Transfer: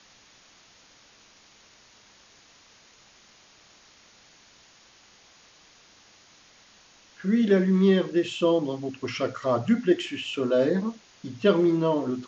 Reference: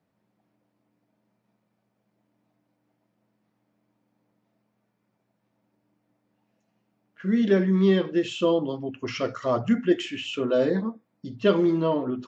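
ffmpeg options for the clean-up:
ffmpeg -i in.wav -af "afwtdn=0.0028" out.wav

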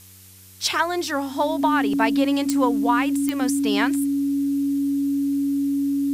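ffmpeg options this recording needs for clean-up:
ffmpeg -i in.wav -af "adeclick=threshold=4,bandreject=frequency=94.7:width_type=h:width=4,bandreject=frequency=189.4:width_type=h:width=4,bandreject=frequency=284.1:width_type=h:width=4,bandreject=frequency=378.8:width_type=h:width=4,bandreject=frequency=473.5:width_type=h:width=4,bandreject=frequency=280:width=30,afftdn=noise_reduction=30:noise_floor=-36" out.wav

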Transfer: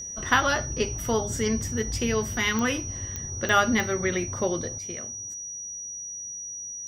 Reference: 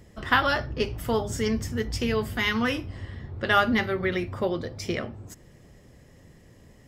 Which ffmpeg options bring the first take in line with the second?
ffmpeg -i in.wav -af "adeclick=threshold=4,bandreject=frequency=5800:width=30,asetnsamples=nb_out_samples=441:pad=0,asendcmd='4.78 volume volume 10.5dB',volume=0dB" out.wav

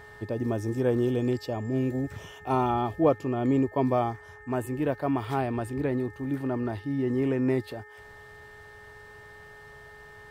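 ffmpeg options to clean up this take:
ffmpeg -i in.wav -af "bandreject=frequency=421.3:width_type=h:width=4,bandreject=frequency=842.6:width_type=h:width=4,bandreject=frequency=1263.9:width_type=h:width=4,bandreject=frequency=1685.2:width_type=h:width=4,bandreject=frequency=2106.5:width_type=h:width=4,bandreject=frequency=1800:width=30" out.wav

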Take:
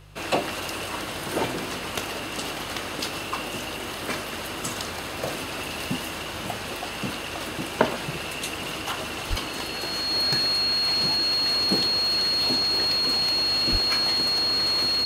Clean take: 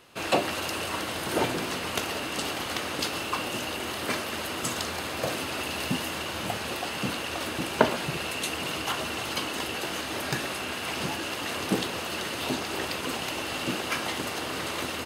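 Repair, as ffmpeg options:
ffmpeg -i in.wav -filter_complex "[0:a]bandreject=frequency=50:width_type=h:width=4,bandreject=frequency=100:width_type=h:width=4,bandreject=frequency=150:width_type=h:width=4,bandreject=frequency=4300:width=30,asplit=3[link_01][link_02][link_03];[link_01]afade=type=out:start_time=9.29:duration=0.02[link_04];[link_02]highpass=frequency=140:width=0.5412,highpass=frequency=140:width=1.3066,afade=type=in:start_time=9.29:duration=0.02,afade=type=out:start_time=9.41:duration=0.02[link_05];[link_03]afade=type=in:start_time=9.41:duration=0.02[link_06];[link_04][link_05][link_06]amix=inputs=3:normalize=0,asplit=3[link_07][link_08][link_09];[link_07]afade=type=out:start_time=13.71:duration=0.02[link_10];[link_08]highpass=frequency=140:width=0.5412,highpass=frequency=140:width=1.3066,afade=type=in:start_time=13.71:duration=0.02,afade=type=out:start_time=13.83:duration=0.02[link_11];[link_09]afade=type=in:start_time=13.83:duration=0.02[link_12];[link_10][link_11][link_12]amix=inputs=3:normalize=0" out.wav

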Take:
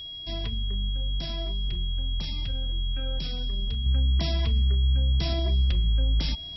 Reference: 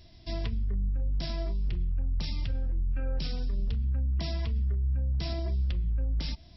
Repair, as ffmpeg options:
ffmpeg -i in.wav -af "bandreject=frequency=3300:width=30,asetnsamples=nb_out_samples=441:pad=0,asendcmd='3.86 volume volume -5.5dB',volume=0dB" out.wav

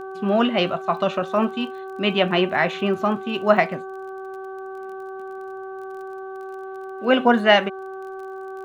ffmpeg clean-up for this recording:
ffmpeg -i in.wav -af "adeclick=threshold=4,bandreject=frequency=382.6:width_type=h:width=4,bandreject=frequency=765.2:width_type=h:width=4,bandreject=frequency=1147.8:width_type=h:width=4,bandreject=frequency=1530.4:width_type=h:width=4" out.wav

